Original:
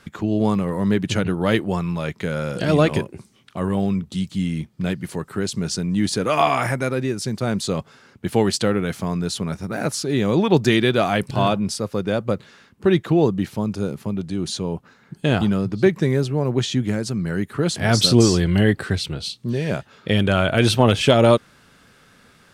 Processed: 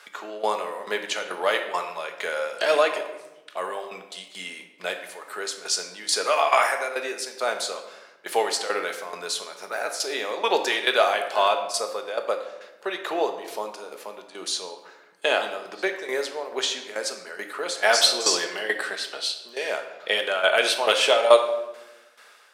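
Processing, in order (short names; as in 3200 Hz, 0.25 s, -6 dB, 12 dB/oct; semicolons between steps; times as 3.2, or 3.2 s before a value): tremolo saw down 2.3 Hz, depth 80%; HPF 540 Hz 24 dB/oct; on a send: reverb RT60 1.0 s, pre-delay 5 ms, DRR 5 dB; on the sum: gain +4 dB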